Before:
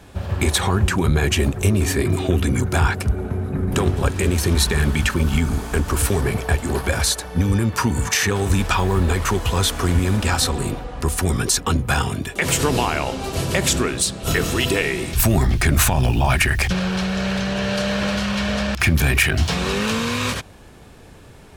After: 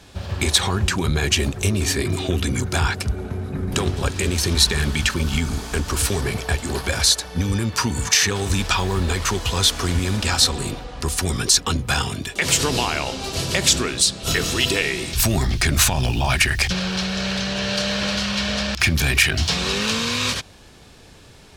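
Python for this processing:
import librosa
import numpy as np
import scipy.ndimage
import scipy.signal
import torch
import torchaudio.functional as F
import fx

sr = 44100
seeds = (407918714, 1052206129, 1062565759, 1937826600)

y = fx.peak_eq(x, sr, hz=4700.0, db=10.0, octaves=1.7)
y = F.gain(torch.from_numpy(y), -3.5).numpy()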